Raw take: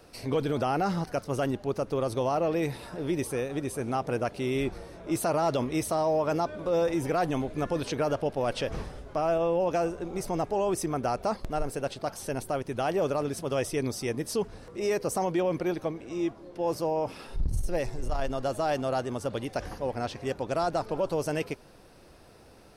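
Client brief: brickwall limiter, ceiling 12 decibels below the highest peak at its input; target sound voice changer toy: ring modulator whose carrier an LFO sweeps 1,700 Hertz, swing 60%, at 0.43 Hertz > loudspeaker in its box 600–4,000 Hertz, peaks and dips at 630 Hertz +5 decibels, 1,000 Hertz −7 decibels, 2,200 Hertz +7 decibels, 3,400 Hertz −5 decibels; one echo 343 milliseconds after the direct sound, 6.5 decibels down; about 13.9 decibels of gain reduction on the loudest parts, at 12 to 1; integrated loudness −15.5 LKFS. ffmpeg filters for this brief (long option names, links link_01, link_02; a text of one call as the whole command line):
ffmpeg -i in.wav -af "acompressor=threshold=-36dB:ratio=12,alimiter=level_in=13dB:limit=-24dB:level=0:latency=1,volume=-13dB,aecho=1:1:343:0.473,aeval=exprs='val(0)*sin(2*PI*1700*n/s+1700*0.6/0.43*sin(2*PI*0.43*n/s))':channel_layout=same,highpass=600,equalizer=frequency=630:width_type=q:width=4:gain=5,equalizer=frequency=1000:width_type=q:width=4:gain=-7,equalizer=frequency=2200:width_type=q:width=4:gain=7,equalizer=frequency=3400:width_type=q:width=4:gain=-5,lowpass=frequency=4000:width=0.5412,lowpass=frequency=4000:width=1.3066,volume=28.5dB" out.wav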